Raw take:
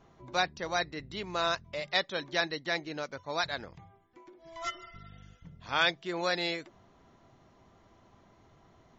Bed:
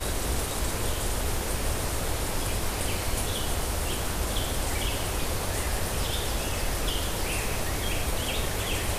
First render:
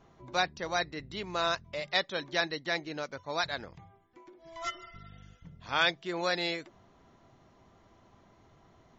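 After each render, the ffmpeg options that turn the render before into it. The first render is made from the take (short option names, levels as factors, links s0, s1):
-af anull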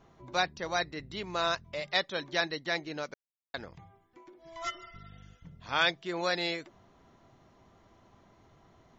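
-filter_complex "[0:a]asplit=3[s0][s1][s2];[s0]atrim=end=3.14,asetpts=PTS-STARTPTS,afade=t=out:st=3.136:d=0.004:c=hsin[s3];[s1]atrim=start=3.14:end=3.54,asetpts=PTS-STARTPTS,volume=0[s4];[s2]atrim=start=3.54,asetpts=PTS-STARTPTS,afade=t=in:d=0.004:c=hsin[s5];[s3][s4][s5]concat=n=3:v=0:a=1"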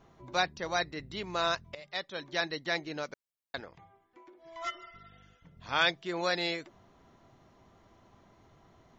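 -filter_complex "[0:a]asettb=1/sr,asplit=3[s0][s1][s2];[s0]atrim=end=3.604[s3];[s1]atrim=start=3.6:end=5.57,asetpts=PTS-STARTPTS,afade=t=in:d=0.004:c=qsin,afade=t=out:st=1.966:d=0.004:c=qsin,bass=f=250:g=-9,treble=f=4000:g=-6[s4];[s2]atrim=start=5.566[s5];[s3][s4]acrossfade=d=0.004:c1=hsin:c2=qsin[s6];[s6][s5]acrossfade=d=0.004:c1=qsin:c2=hsin,asplit=2[s7][s8];[s7]atrim=end=1.75,asetpts=PTS-STARTPTS,afade=t=out:st=1.746:d=0.004:c=hsin:silence=0.199526[s9];[s8]atrim=start=1.75,asetpts=PTS-STARTPTS,afade=t=in:d=0.86:silence=0.199526[s10];[s9][s10]concat=n=2:v=0:a=1"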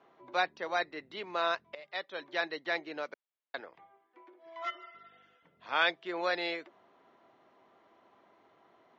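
-filter_complex "[0:a]highpass=94,acrossover=split=280 3900:gain=0.0891 1 0.1[s0][s1][s2];[s0][s1][s2]amix=inputs=3:normalize=0"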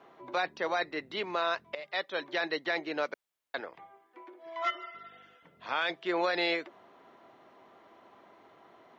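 -af "acontrast=67,alimiter=limit=0.1:level=0:latency=1:release=23"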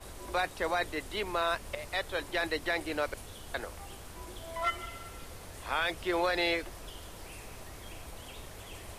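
-filter_complex "[1:a]volume=0.133[s0];[0:a][s0]amix=inputs=2:normalize=0"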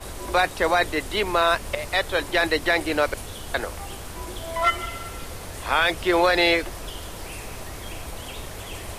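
-af "volume=3.35"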